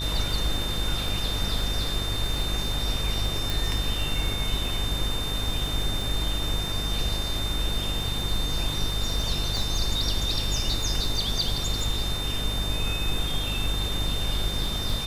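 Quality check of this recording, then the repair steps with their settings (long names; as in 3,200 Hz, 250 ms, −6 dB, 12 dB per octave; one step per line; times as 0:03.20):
mains buzz 50 Hz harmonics 27 −31 dBFS
surface crackle 38 per second −31 dBFS
whistle 3,600 Hz −31 dBFS
0:03.50: click
0:09.57: click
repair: click removal
hum removal 50 Hz, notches 27
notch filter 3,600 Hz, Q 30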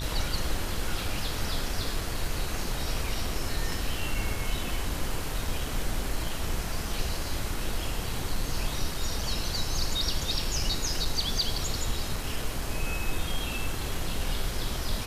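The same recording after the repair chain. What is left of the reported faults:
0:09.57: click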